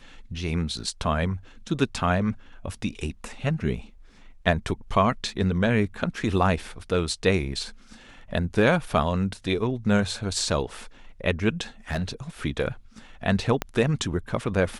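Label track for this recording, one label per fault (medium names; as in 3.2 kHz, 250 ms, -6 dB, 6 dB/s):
11.910000	12.040000	clipped -22.5 dBFS
13.620000	13.620000	pop -11 dBFS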